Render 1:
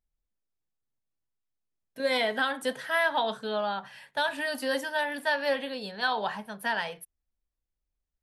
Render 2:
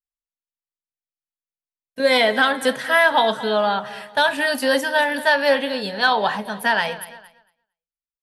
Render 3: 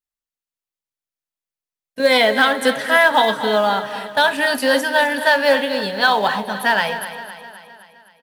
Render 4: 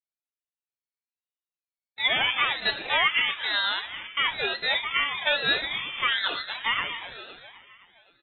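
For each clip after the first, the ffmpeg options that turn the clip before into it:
-af "aecho=1:1:228|456|684|912:0.141|0.0692|0.0339|0.0166,agate=range=-33dB:threshold=-47dB:ratio=3:detection=peak,acontrast=78,volume=3.5dB"
-filter_complex "[0:a]asplit=2[a][b];[b]acrusher=bits=3:mode=log:mix=0:aa=0.000001,volume=-11dB[c];[a][c]amix=inputs=2:normalize=0,aecho=1:1:259|518|777|1036|1295|1554:0.224|0.125|0.0702|0.0393|0.022|0.0123"
-af "lowpass=f=2.8k:t=q:w=0.5098,lowpass=f=2.8k:t=q:w=0.6013,lowpass=f=2.8k:t=q:w=0.9,lowpass=f=2.8k:t=q:w=2.563,afreqshift=-3300,aeval=exprs='val(0)*sin(2*PI*730*n/s+730*0.5/1.1*sin(2*PI*1.1*n/s))':c=same,volume=-6.5dB"

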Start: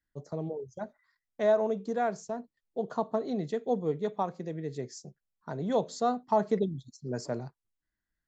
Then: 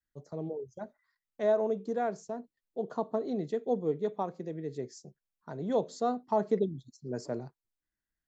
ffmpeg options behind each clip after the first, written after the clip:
-af "adynamicequalizer=threshold=0.0112:dfrequency=360:dqfactor=0.9:tfrequency=360:tqfactor=0.9:attack=5:release=100:ratio=0.375:range=3:mode=boostabove:tftype=bell,volume=-5dB"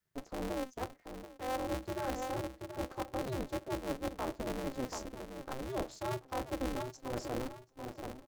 -filter_complex "[0:a]asplit=2[a][b];[b]adelay=733,lowpass=f=1.3k:p=1,volume=-13dB,asplit=2[c][d];[d]adelay=733,lowpass=f=1.3k:p=1,volume=0.27,asplit=2[e][f];[f]adelay=733,lowpass=f=1.3k:p=1,volume=0.27[g];[a][c][e][g]amix=inputs=4:normalize=0,areverse,acompressor=threshold=-38dB:ratio=12,areverse,aeval=exprs='val(0)*sgn(sin(2*PI*130*n/s))':c=same,volume=4.5dB"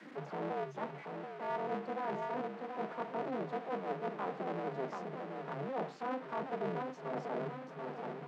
-af "aeval=exprs='val(0)+0.5*0.0112*sgn(val(0))':c=same,lowpass=2k,afreqshift=140,volume=-3dB"

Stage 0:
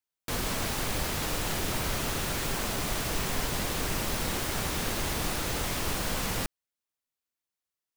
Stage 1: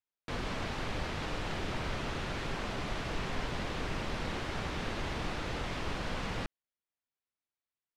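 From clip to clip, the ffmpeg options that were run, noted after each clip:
-af "lowpass=3.5k,volume=-4dB"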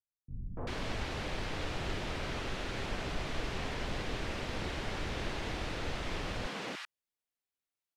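-filter_complex "[0:a]acrossover=split=180|1100[a][b][c];[b]adelay=290[d];[c]adelay=390[e];[a][d][e]amix=inputs=3:normalize=0"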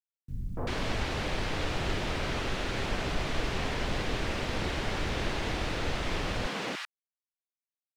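-af "acrusher=bits=11:mix=0:aa=0.000001,volume=5.5dB"

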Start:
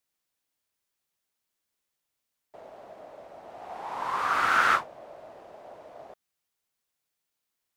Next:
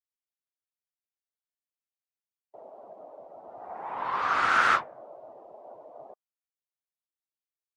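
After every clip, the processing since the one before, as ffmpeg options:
-af "afftdn=nr=20:nf=-50"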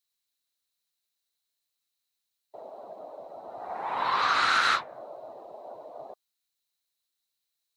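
-af "highshelf=f=2.3k:g=9,acompressor=threshold=-25dB:ratio=4,equalizer=f=4k:t=o:w=0.21:g=13.5,volume=3dB"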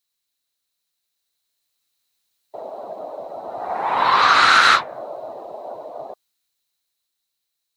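-af "dynaudnorm=f=260:g=13:m=6.5dB,volume=4.5dB"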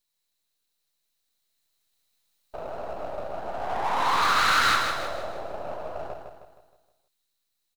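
-filter_complex "[0:a]aeval=exprs='if(lt(val(0),0),0.251*val(0),val(0))':c=same,aeval=exprs='(tanh(7.94*val(0)+0.4)-tanh(0.4))/7.94':c=same,asplit=2[a][b];[b]aecho=0:1:157|314|471|628|785|942:0.501|0.231|0.106|0.0488|0.0224|0.0103[c];[a][c]amix=inputs=2:normalize=0,volume=2.5dB"

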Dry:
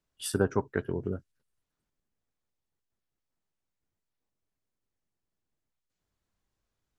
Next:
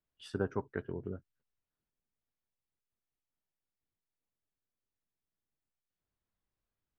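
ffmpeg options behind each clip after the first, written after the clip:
-af "lowpass=3.6k,volume=-7.5dB"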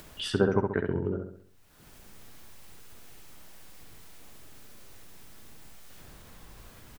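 -filter_complex "[0:a]acompressor=mode=upward:threshold=-35dB:ratio=2.5,asplit=2[a][b];[b]adelay=67,lowpass=f=2.7k:p=1,volume=-4dB,asplit=2[c][d];[d]adelay=67,lowpass=f=2.7k:p=1,volume=0.47,asplit=2[e][f];[f]adelay=67,lowpass=f=2.7k:p=1,volume=0.47,asplit=2[g][h];[h]adelay=67,lowpass=f=2.7k:p=1,volume=0.47,asplit=2[i][j];[j]adelay=67,lowpass=f=2.7k:p=1,volume=0.47,asplit=2[k][l];[l]adelay=67,lowpass=f=2.7k:p=1,volume=0.47[m];[c][e][g][i][k][m]amix=inputs=6:normalize=0[n];[a][n]amix=inputs=2:normalize=0,volume=8.5dB"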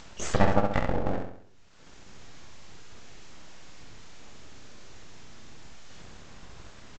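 -filter_complex "[0:a]aresample=16000,aeval=exprs='abs(val(0))':c=same,aresample=44100,asplit=2[a][b];[b]adelay=29,volume=-10.5dB[c];[a][c]amix=inputs=2:normalize=0,volume=4dB"

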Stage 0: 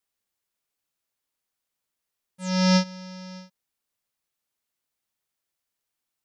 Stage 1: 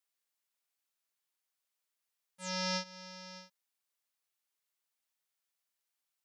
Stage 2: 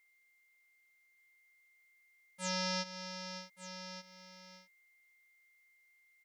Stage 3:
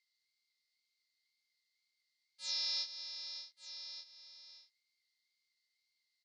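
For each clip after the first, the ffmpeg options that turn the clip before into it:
-af "highpass=f=770:p=1,acompressor=threshold=-30dB:ratio=2,volume=-3dB"
-af "alimiter=level_in=2dB:limit=-24dB:level=0:latency=1:release=28,volume=-2dB,aeval=exprs='val(0)+0.000224*sin(2*PI*2100*n/s)':c=same,aecho=1:1:1181:0.266,volume=4.5dB"
-filter_complex "[0:a]flanger=delay=5.3:depth=4.5:regen=-58:speed=2:shape=triangular,bandpass=f=4.4k:t=q:w=6.6:csg=0,asplit=2[a][b];[b]adelay=25,volume=-4dB[c];[a][c]amix=inputs=2:normalize=0,volume=12.5dB"

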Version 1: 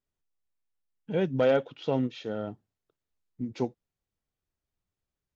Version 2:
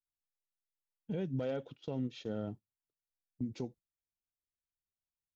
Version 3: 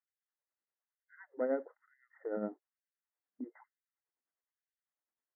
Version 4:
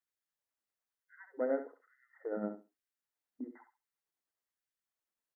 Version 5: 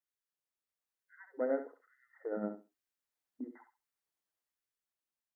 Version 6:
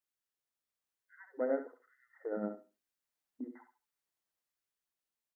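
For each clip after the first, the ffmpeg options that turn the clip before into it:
-af "agate=range=-17dB:threshold=-43dB:ratio=16:detection=peak,equalizer=f=1.3k:w=0.3:g=-10,alimiter=level_in=5dB:limit=-24dB:level=0:latency=1:release=141,volume=-5dB,volume=1dB"
-af "tremolo=f=9.8:d=0.57,afftfilt=real='re*between(b*sr/4096,140,2100)':imag='im*between(b*sr/4096,140,2100)':win_size=4096:overlap=0.75,afftfilt=real='re*gte(b*sr/1024,200*pow(1500/200,0.5+0.5*sin(2*PI*1.1*pts/sr)))':imag='im*gte(b*sr/1024,200*pow(1500/200,0.5+0.5*sin(2*PI*1.1*pts/sr)))':win_size=1024:overlap=0.75,volume=6.5dB"
-af "aecho=1:1:67|134|201:0.355|0.0639|0.0115"
-af "dynaudnorm=f=260:g=7:m=5dB,volume=-5dB"
-af "aecho=1:1:75|150:0.126|0.0315"

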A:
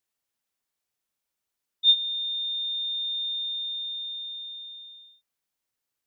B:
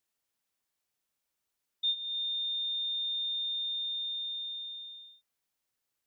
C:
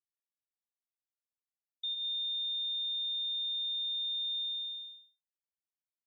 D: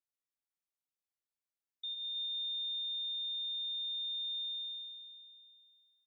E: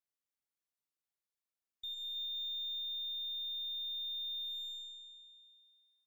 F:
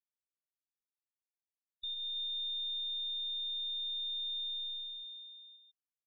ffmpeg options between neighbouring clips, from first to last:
-af "acompressor=threshold=-33dB:ratio=3"
-af "agate=range=-33dB:threshold=-41dB:ratio=3:detection=peak,alimiter=level_in=10.5dB:limit=-24dB:level=0:latency=1,volume=-10.5dB,volume=2.5dB"
-af "aecho=1:1:322|644|966|1288:0.335|0.137|0.0563|0.0231,volume=-4.5dB"
-af "aeval=exprs='0.0188*(cos(1*acos(clip(val(0)/0.0188,-1,1)))-cos(1*PI/2))+0.000531*(cos(2*acos(clip(val(0)/0.0188,-1,1)))-cos(2*PI/2))+0.00075*(cos(6*acos(clip(val(0)/0.0188,-1,1)))-cos(6*PI/2))':c=same,volume=-2dB"
-filter_complex "[0:a]acrossover=split=3000[a][b];[b]acompressor=threshold=-53dB:ratio=4:attack=1:release=60[c];[a][c]amix=inputs=2:normalize=0,afftfilt=real='re*gte(hypot(re,im),0.00501)':imag='im*gte(hypot(re,im),0.00501)':win_size=1024:overlap=0.75,volume=7.5dB"

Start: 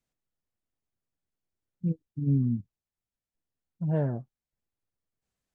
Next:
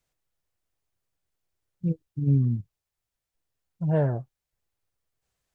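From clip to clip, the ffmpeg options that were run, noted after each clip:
-af "equalizer=f=230:w=1.7:g=-9.5,volume=6.5dB"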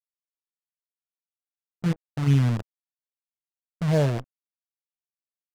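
-af "acrusher=bits=6:dc=4:mix=0:aa=0.000001,adynamicsmooth=sensitivity=6.5:basefreq=670,volume=2dB"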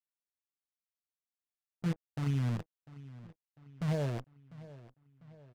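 -filter_complex "[0:a]alimiter=limit=-16dB:level=0:latency=1:release=164,asplit=2[a][b];[b]adelay=698,lowpass=f=4.7k:p=1,volume=-18dB,asplit=2[c][d];[d]adelay=698,lowpass=f=4.7k:p=1,volume=0.51,asplit=2[e][f];[f]adelay=698,lowpass=f=4.7k:p=1,volume=0.51,asplit=2[g][h];[h]adelay=698,lowpass=f=4.7k:p=1,volume=0.51[i];[a][c][e][g][i]amix=inputs=5:normalize=0,volume=-8dB"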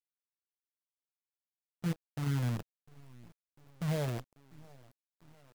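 -af "acrusher=bits=7:dc=4:mix=0:aa=0.000001,volume=-1dB"

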